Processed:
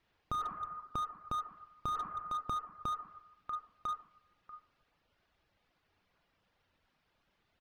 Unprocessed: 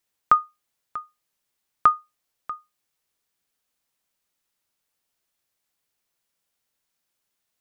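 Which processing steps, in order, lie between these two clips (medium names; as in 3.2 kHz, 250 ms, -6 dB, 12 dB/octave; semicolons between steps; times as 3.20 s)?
distance through air 310 m; reverberation RT60 0.90 s, pre-delay 22 ms, DRR 1 dB; reverb removal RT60 0.68 s; bass shelf 140 Hz +8 dB; feedback delay 999 ms, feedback 24%, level -18 dB; peak limiter -16.5 dBFS, peak gain reduction 10 dB; compression 4:1, threshold -39 dBFS, peak gain reduction 16 dB; slew-rate limiter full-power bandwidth 7.8 Hz; trim +10.5 dB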